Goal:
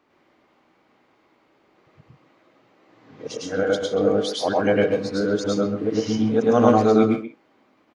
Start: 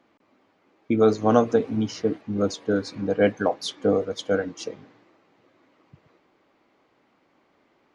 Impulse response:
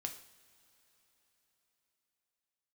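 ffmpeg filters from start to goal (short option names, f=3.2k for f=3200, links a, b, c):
-filter_complex "[0:a]areverse,asplit=2[a][b];[b]adelay=130,highpass=300,lowpass=3.4k,asoftclip=type=hard:threshold=-13dB,volume=-8dB[c];[a][c]amix=inputs=2:normalize=0,asplit=2[d][e];[1:a]atrim=start_sample=2205,atrim=end_sample=3528,adelay=105[f];[e][f]afir=irnorm=-1:irlink=0,volume=3.5dB[g];[d][g]amix=inputs=2:normalize=0,volume=-1dB"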